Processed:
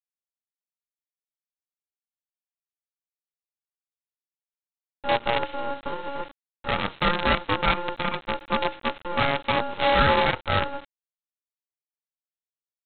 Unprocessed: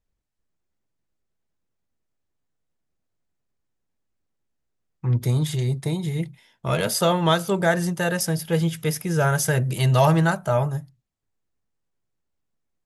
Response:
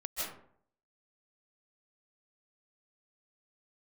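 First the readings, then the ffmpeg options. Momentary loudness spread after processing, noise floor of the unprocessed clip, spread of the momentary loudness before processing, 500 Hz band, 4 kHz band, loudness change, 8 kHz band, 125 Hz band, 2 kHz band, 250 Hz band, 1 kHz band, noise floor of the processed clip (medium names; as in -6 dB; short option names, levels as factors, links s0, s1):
13 LU, -78 dBFS, 10 LU, -3.0 dB, +2.0 dB, -2.5 dB, under -40 dB, -13.5 dB, +2.0 dB, -7.5 dB, +3.0 dB, under -85 dBFS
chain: -af "aeval=exprs='val(0)*sin(2*PI*700*n/s)':c=same,aresample=8000,acrusher=bits=4:dc=4:mix=0:aa=0.000001,aresample=44100"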